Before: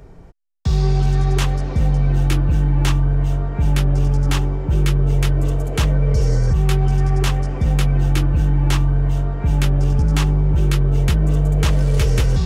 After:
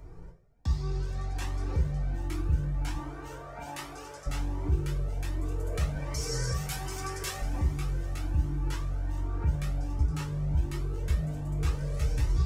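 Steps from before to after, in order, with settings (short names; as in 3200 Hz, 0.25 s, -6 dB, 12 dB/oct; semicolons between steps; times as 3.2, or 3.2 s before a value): 2.94–4.26 HPF 350 Hz -> 780 Hz 12 dB/oct; 5.95–7.42 tilt +3.5 dB/oct; limiter -17 dBFS, peak gain reduction 11 dB; bell 3100 Hz -5.5 dB 0.6 oct; two-slope reverb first 0.38 s, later 4.4 s, from -20 dB, DRR 1.5 dB; cascading flanger rising 1.3 Hz; gain -3.5 dB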